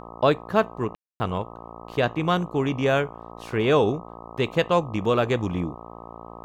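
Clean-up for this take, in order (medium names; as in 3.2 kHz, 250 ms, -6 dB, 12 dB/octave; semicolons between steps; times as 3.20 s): de-hum 57.3 Hz, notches 22; room tone fill 0.95–1.20 s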